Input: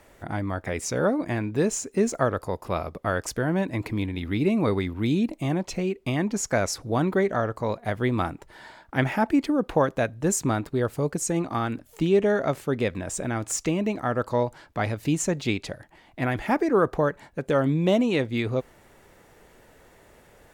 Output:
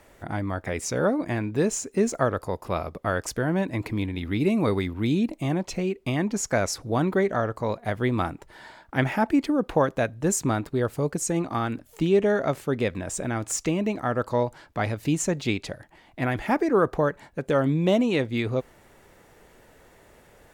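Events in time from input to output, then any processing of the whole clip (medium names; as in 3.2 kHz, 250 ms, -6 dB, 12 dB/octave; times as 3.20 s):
4.40–4.87 s: treble shelf 6.5 kHz +6 dB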